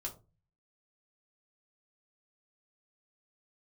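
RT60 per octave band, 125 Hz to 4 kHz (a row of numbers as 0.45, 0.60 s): 0.70, 0.50, 0.35, 0.25, 0.20, 0.20 s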